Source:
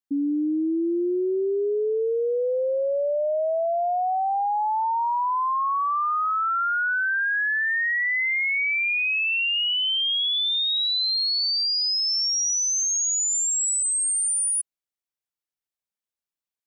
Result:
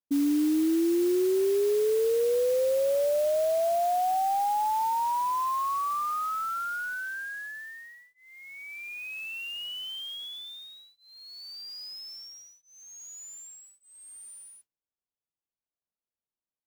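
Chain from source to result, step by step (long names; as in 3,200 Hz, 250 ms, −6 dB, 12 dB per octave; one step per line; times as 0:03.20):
moving average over 22 samples
noise that follows the level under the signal 18 dB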